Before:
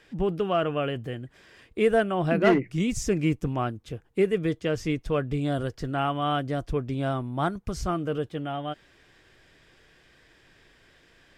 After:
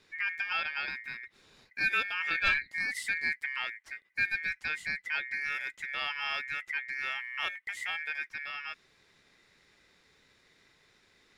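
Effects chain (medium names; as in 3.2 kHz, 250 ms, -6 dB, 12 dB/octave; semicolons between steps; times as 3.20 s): ring modulator 2 kHz; dynamic bell 600 Hz, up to -7 dB, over -47 dBFS, Q 0.97; trim -4 dB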